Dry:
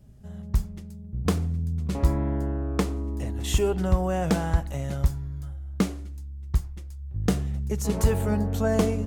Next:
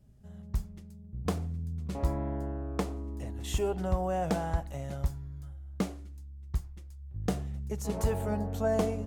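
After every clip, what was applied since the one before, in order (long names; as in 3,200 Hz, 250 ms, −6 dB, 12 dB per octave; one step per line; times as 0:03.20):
dynamic equaliser 700 Hz, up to +7 dB, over −42 dBFS, Q 1.5
level −8 dB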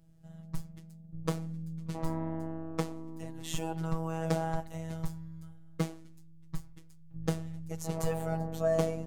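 phases set to zero 162 Hz
level +1.5 dB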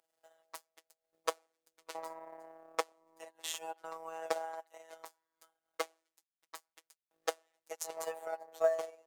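inverse Chebyshev high-pass filter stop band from 160 Hz, stop band 60 dB
log-companded quantiser 8 bits
transient designer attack +11 dB, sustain −11 dB
level −5 dB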